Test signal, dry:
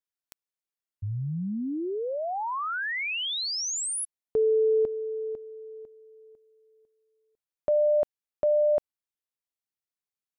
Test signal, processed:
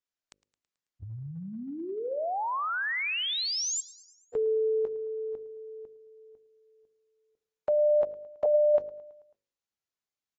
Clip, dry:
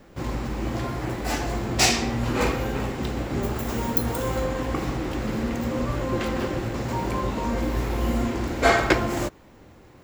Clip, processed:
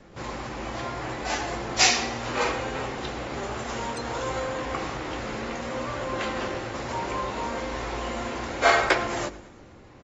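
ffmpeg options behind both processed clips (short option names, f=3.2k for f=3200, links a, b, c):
-filter_complex "[0:a]bandreject=f=51.18:t=h:w=4,bandreject=f=102.36:t=h:w=4,bandreject=f=153.54:t=h:w=4,bandreject=f=204.72:t=h:w=4,bandreject=f=255.9:t=h:w=4,bandreject=f=307.08:t=h:w=4,bandreject=f=358.26:t=h:w=4,bandreject=f=409.44:t=h:w=4,bandreject=f=460.62:t=h:w=4,bandreject=f=511.8:t=h:w=4,bandreject=f=562.98:t=h:w=4,acrossover=split=470[a][b];[a]acompressor=threshold=-38dB:ratio=4:attack=0.2:release=210:knee=2.83:detection=peak[c];[c][b]amix=inputs=2:normalize=0,aecho=1:1:109|218|327|436|545:0.1|0.058|0.0336|0.0195|0.0113" -ar 32000 -c:a aac -b:a 24k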